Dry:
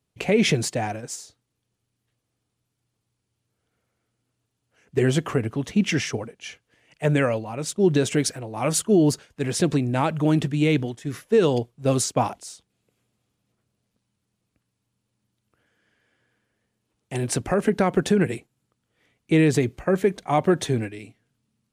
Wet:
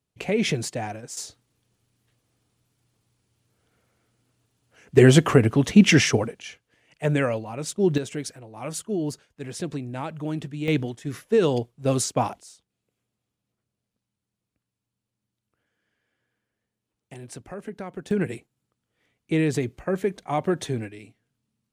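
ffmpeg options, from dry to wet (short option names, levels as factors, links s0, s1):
-af "asetnsamples=n=441:p=0,asendcmd='1.17 volume volume 7dB;6.42 volume volume -2dB;7.98 volume volume -9.5dB;10.68 volume volume -1.5dB;12.41 volume volume -8dB;17.14 volume volume -15dB;18.11 volume volume -4.5dB',volume=0.631"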